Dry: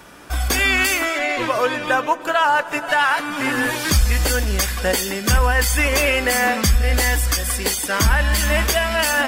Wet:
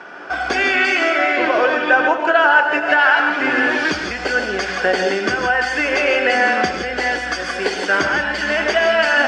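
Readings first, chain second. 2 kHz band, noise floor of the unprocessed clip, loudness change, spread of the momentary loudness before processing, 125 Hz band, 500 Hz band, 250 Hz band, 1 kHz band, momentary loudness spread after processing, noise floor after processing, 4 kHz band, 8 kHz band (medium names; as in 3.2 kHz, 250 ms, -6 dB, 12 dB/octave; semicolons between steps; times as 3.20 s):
+5.0 dB, -31 dBFS, +2.0 dB, 4 LU, -17.0 dB, +4.5 dB, +1.5 dB, +3.0 dB, 7 LU, -26 dBFS, -1.0 dB, -13.0 dB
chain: dynamic bell 1.1 kHz, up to -6 dB, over -32 dBFS, Q 1.1; compression, threshold -17 dBFS, peak gain reduction 6.5 dB; cabinet simulation 260–4700 Hz, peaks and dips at 390 Hz +6 dB, 730 Hz +8 dB, 1.5 kHz +10 dB, 3.8 kHz -8 dB; gated-style reverb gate 190 ms rising, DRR 3.5 dB; trim +3 dB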